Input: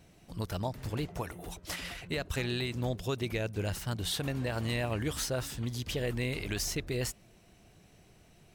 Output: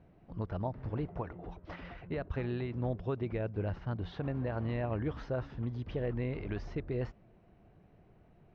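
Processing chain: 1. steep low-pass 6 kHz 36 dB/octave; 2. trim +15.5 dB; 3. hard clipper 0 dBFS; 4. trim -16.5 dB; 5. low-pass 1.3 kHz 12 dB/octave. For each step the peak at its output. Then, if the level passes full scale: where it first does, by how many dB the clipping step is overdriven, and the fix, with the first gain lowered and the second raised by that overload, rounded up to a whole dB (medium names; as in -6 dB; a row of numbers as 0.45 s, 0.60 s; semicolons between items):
-21.5 dBFS, -6.0 dBFS, -6.0 dBFS, -22.5 dBFS, -23.5 dBFS; nothing clips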